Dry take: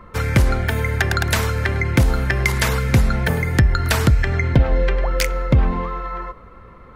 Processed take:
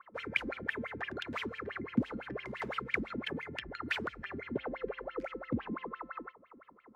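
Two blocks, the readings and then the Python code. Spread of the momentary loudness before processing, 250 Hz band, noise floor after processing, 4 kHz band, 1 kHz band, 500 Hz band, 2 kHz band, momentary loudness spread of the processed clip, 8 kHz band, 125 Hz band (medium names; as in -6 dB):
5 LU, -14.0 dB, -62 dBFS, -16.5 dB, -16.0 dB, -16.0 dB, -15.0 dB, 7 LU, under -30 dB, -30.0 dB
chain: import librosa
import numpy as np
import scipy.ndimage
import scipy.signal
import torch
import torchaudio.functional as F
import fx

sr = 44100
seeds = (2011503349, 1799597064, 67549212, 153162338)

y = fx.dynamic_eq(x, sr, hz=710.0, q=2.7, threshold_db=-41.0, ratio=4.0, max_db=-6)
y = fx.wah_lfo(y, sr, hz=5.9, low_hz=220.0, high_hz=3200.0, q=11.0)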